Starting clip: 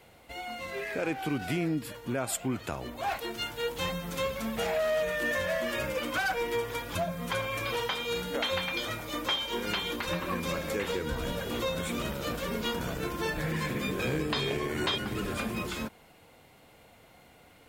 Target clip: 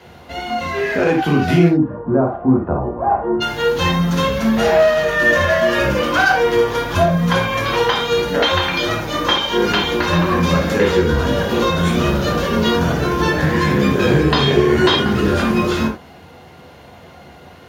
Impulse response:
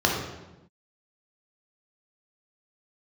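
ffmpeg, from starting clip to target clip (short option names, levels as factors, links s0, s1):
-filter_complex "[0:a]asplit=3[s0][s1][s2];[s0]afade=t=out:st=1.68:d=0.02[s3];[s1]lowpass=f=1100:w=0.5412,lowpass=f=1100:w=1.3066,afade=t=in:st=1.68:d=0.02,afade=t=out:st=3.4:d=0.02[s4];[s2]afade=t=in:st=3.4:d=0.02[s5];[s3][s4][s5]amix=inputs=3:normalize=0[s6];[1:a]atrim=start_sample=2205,atrim=end_sample=3969[s7];[s6][s7]afir=irnorm=-1:irlink=0"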